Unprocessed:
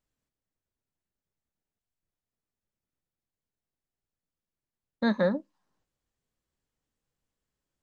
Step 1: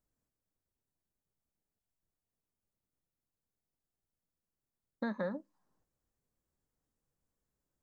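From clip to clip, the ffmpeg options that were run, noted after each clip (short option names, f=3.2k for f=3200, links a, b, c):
-filter_complex "[0:a]acrossover=split=970|3000[a][b][c];[a]acompressor=threshold=-36dB:ratio=4[d];[b]acompressor=threshold=-39dB:ratio=4[e];[c]acompressor=threshold=-55dB:ratio=4[f];[d][e][f]amix=inputs=3:normalize=0,equalizer=f=3.1k:w=0.77:g=-10.5"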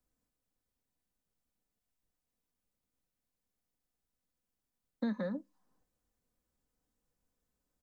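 -filter_complex "[0:a]aecho=1:1:4:0.36,acrossover=split=140|430|2100[a][b][c][d];[c]alimiter=level_in=15dB:limit=-24dB:level=0:latency=1:release=491,volume=-15dB[e];[a][b][e][d]amix=inputs=4:normalize=0,volume=1.5dB"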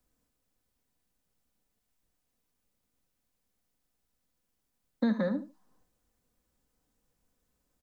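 -af "aecho=1:1:75|150:0.224|0.0358,volume=6.5dB"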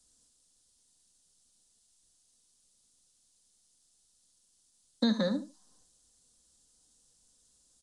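-af "aexciter=amount=7.7:drive=4:freq=3.3k,aresample=22050,aresample=44100"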